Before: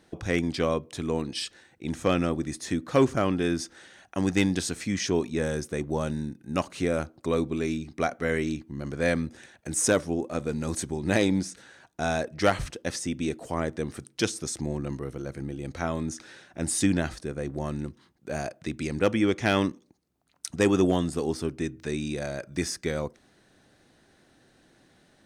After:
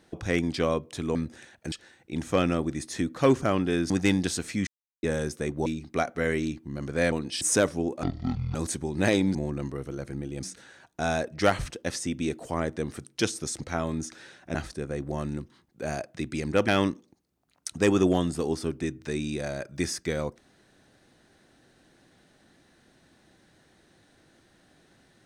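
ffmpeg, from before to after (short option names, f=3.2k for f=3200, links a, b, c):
-filter_complex "[0:a]asplit=16[a][b][c][d][e][f][g][h][i][j][k][l][m][n][o][p];[a]atrim=end=1.152[q];[b]atrim=start=9.158:end=9.732[r];[c]atrim=start=1.438:end=3.622[s];[d]atrim=start=4.218:end=4.99,asetpts=PTS-STARTPTS,afade=t=out:st=0.768:d=0.004:c=hsin[t];[e]atrim=start=4.99:end=5.35,asetpts=PTS-STARTPTS,volume=0[u];[f]atrim=start=5.35:end=5.982,asetpts=PTS-STARTPTS,afade=t=in:d=0.004:c=hsin[v];[g]atrim=start=7.698:end=9.162[w];[h]atrim=start=1.148:end=1.442[x];[i]atrim=start=9.728:end=10.354[y];[j]atrim=start=10.35:end=10.63,asetpts=PTS-STARTPTS,asetrate=23814,aresample=44100[z];[k]atrim=start=10.626:end=11.432[aa];[l]atrim=start=14.618:end=15.702[ab];[m]atrim=start=11.428:end=14.622[ac];[n]atrim=start=15.698:end=16.632[ad];[o]atrim=start=17.018:end=19.152[ae];[p]atrim=start=19.458[af];[q][r]acrossfade=d=0.004:c1=hsin:c2=hsin[ag];[ag][s]acrossfade=d=0.004:c1=hsin:c2=hsin[ah];[t][u][v]concat=n=3:v=0:a=1[ai];[ah][ai]acrossfade=d=0.004:c1=hsin:c2=hsin[aj];[aj][w]acrossfade=d=0.004:c1=hsin:c2=hsin[ak];[ak][x]acrossfade=d=0.004:c1=hsin:c2=hsin[al];[al][y]acrossfade=d=0.004:c1=hsin:c2=hsin[am];[am][z]acrossfade=d=0.004:c1=hsin:c2=hsin[an];[an][aa]acrossfade=d=0.004:c1=hsin:c2=hsin[ao];[ao][ab]acrossfade=d=0.004:c1=hsin:c2=hsin[ap];[ap][ac]acrossfade=d=0.004:c1=hsin:c2=hsin[aq];[aq][ad]acrossfade=d=0.004:c1=hsin:c2=hsin[ar];[ar][ae]acrossfade=d=0.004:c1=hsin:c2=hsin[as];[as][af]acrossfade=d=0.004:c1=hsin:c2=hsin"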